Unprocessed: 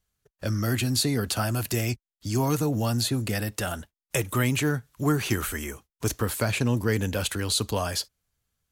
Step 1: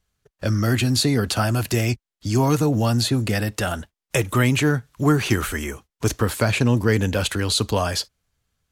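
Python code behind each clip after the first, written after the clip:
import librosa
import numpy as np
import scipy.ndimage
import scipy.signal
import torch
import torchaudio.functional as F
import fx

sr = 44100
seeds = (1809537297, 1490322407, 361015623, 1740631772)

y = fx.high_shelf(x, sr, hz=10000.0, db=-11.0)
y = F.gain(torch.from_numpy(y), 6.0).numpy()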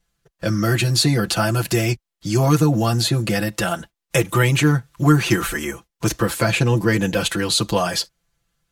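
y = x + 0.94 * np.pad(x, (int(5.9 * sr / 1000.0), 0))[:len(x)]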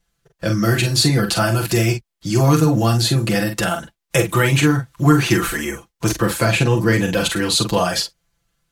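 y = fx.doubler(x, sr, ms=44.0, db=-6.5)
y = F.gain(torch.from_numpy(y), 1.0).numpy()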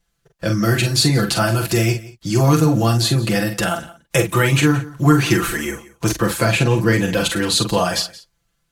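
y = x + 10.0 ** (-19.5 / 20.0) * np.pad(x, (int(175 * sr / 1000.0), 0))[:len(x)]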